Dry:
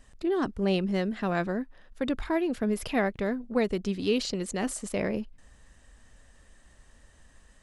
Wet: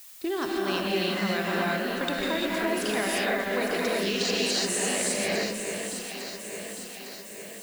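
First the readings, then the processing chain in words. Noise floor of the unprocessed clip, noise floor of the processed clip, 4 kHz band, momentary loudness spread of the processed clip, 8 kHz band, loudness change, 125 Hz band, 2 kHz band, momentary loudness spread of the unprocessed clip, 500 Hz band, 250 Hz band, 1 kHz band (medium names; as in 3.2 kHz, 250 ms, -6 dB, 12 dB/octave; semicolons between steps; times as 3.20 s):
-59 dBFS, -42 dBFS, +10.5 dB, 11 LU, +11.5 dB, +2.0 dB, -2.5 dB, +8.0 dB, 5 LU, +1.5 dB, -1.5 dB, +4.5 dB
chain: tilt EQ +3.5 dB/octave; gated-style reverb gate 380 ms rising, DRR -5.5 dB; gate -42 dBFS, range -14 dB; low-pass 8.2 kHz 12 dB/octave; compression 3:1, threshold -33 dBFS, peak gain reduction 11.5 dB; echo whose repeats swap between lows and highs 427 ms, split 2.4 kHz, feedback 76%, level -5.5 dB; added noise blue -53 dBFS; trim +5 dB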